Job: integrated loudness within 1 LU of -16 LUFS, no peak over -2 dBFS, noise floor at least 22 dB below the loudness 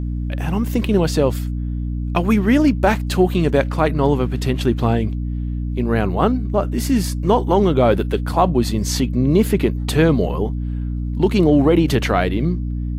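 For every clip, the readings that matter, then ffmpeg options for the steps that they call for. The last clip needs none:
hum 60 Hz; harmonics up to 300 Hz; hum level -20 dBFS; loudness -18.5 LUFS; peak -1.5 dBFS; loudness target -16.0 LUFS
-> -af "bandreject=f=60:t=h:w=6,bandreject=f=120:t=h:w=6,bandreject=f=180:t=h:w=6,bandreject=f=240:t=h:w=6,bandreject=f=300:t=h:w=6"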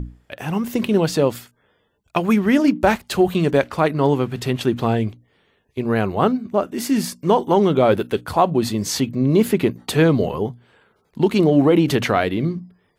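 hum none; loudness -19.0 LUFS; peak -2.5 dBFS; loudness target -16.0 LUFS
-> -af "volume=3dB,alimiter=limit=-2dB:level=0:latency=1"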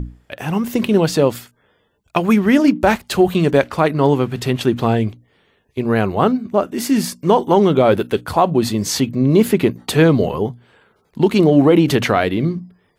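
loudness -16.5 LUFS; peak -2.0 dBFS; noise floor -62 dBFS

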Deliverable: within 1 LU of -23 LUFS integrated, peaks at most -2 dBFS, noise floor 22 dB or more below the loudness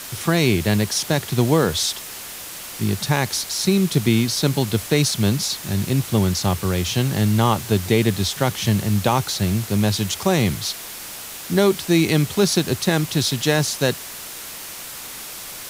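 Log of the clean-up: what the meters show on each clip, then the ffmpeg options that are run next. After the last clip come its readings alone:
noise floor -35 dBFS; noise floor target -42 dBFS; loudness -20.0 LUFS; peak -3.5 dBFS; loudness target -23.0 LUFS
-> -af "afftdn=nr=7:nf=-35"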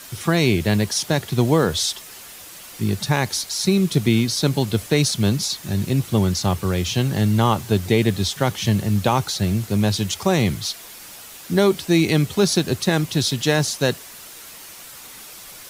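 noise floor -40 dBFS; noise floor target -43 dBFS
-> -af "afftdn=nr=6:nf=-40"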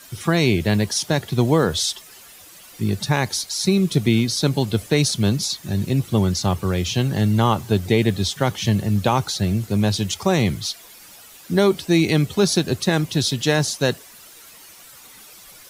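noise floor -45 dBFS; loudness -20.5 LUFS; peak -4.0 dBFS; loudness target -23.0 LUFS
-> -af "volume=-2.5dB"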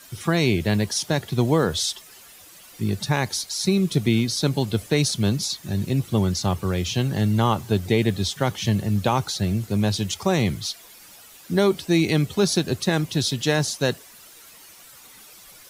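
loudness -23.0 LUFS; peak -6.5 dBFS; noise floor -47 dBFS

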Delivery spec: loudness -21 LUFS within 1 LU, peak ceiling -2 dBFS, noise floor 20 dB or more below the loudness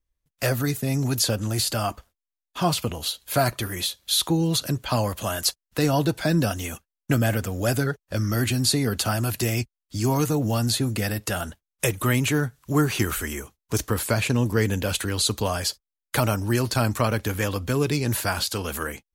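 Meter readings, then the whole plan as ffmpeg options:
loudness -24.5 LUFS; peak -8.5 dBFS; loudness target -21.0 LUFS
-> -af "volume=3.5dB"

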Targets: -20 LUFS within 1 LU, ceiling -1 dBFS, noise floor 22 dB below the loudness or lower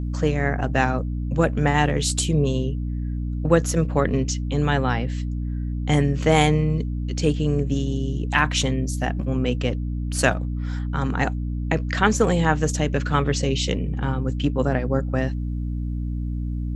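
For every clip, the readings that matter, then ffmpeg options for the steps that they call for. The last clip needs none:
hum 60 Hz; harmonics up to 300 Hz; hum level -24 dBFS; loudness -23.0 LUFS; peak -1.5 dBFS; loudness target -20.0 LUFS
-> -af "bandreject=f=60:t=h:w=6,bandreject=f=120:t=h:w=6,bandreject=f=180:t=h:w=6,bandreject=f=240:t=h:w=6,bandreject=f=300:t=h:w=6"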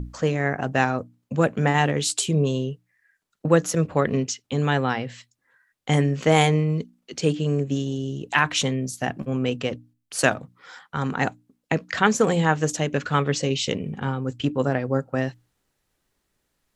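hum none; loudness -24.0 LUFS; peak -2.0 dBFS; loudness target -20.0 LUFS
-> -af "volume=4dB,alimiter=limit=-1dB:level=0:latency=1"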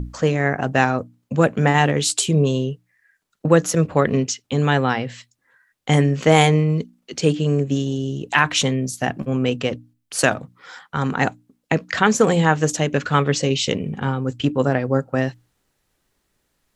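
loudness -20.0 LUFS; peak -1.0 dBFS; noise floor -72 dBFS

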